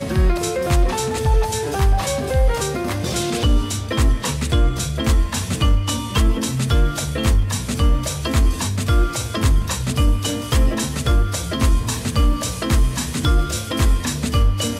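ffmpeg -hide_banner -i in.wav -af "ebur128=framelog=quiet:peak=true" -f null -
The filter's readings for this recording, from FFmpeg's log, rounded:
Integrated loudness:
  I:         -20.1 LUFS
  Threshold: -30.1 LUFS
Loudness range:
  LRA:         0.6 LU
  Threshold: -40.1 LUFS
  LRA low:   -20.4 LUFS
  LRA high:  -19.8 LUFS
True peak:
  Peak:       -6.7 dBFS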